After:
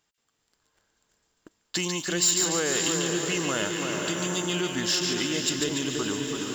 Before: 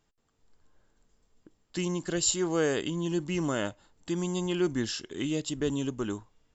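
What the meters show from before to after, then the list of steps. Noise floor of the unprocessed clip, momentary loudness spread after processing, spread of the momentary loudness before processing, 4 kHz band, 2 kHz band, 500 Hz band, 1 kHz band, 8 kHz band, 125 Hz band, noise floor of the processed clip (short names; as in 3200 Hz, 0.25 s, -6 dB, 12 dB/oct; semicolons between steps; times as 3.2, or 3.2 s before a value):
-74 dBFS, 6 LU, 9 LU, +10.0 dB, +8.5 dB, +1.0 dB, +5.5 dB, n/a, -0.5 dB, -76 dBFS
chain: on a send: diffused feedback echo 0.537 s, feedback 43%, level -8.5 dB; on the sum: compressor 2.5:1, threshold -36 dBFS, peak gain reduction 9.5 dB; tilt shelf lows -5.5 dB; split-band echo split 1700 Hz, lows 0.335 s, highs 0.144 s, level -5 dB; sample leveller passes 2; HPF 92 Hz 6 dB/oct; gain +3 dB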